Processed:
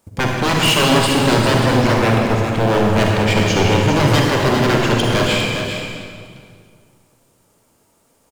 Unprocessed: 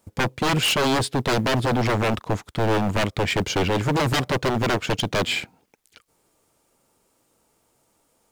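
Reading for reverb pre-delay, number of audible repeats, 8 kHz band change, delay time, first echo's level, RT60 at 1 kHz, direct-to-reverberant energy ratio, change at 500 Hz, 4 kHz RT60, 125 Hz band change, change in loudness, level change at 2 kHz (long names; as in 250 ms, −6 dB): 37 ms, 1, +6.5 dB, 402 ms, −8.0 dB, 2.0 s, −2.0 dB, +7.5 dB, 1.6 s, +8.5 dB, +7.5 dB, +7.0 dB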